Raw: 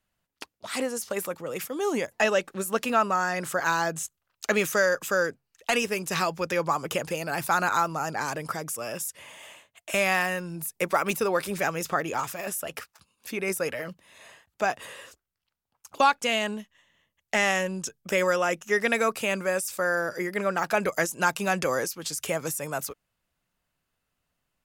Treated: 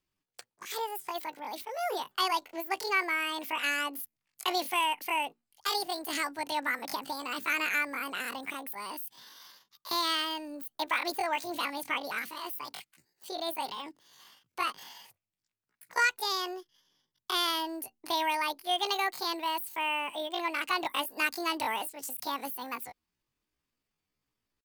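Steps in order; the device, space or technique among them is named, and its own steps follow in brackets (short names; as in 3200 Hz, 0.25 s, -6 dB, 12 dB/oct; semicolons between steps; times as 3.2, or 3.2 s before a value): chipmunk voice (pitch shift +9.5 st); gain -5.5 dB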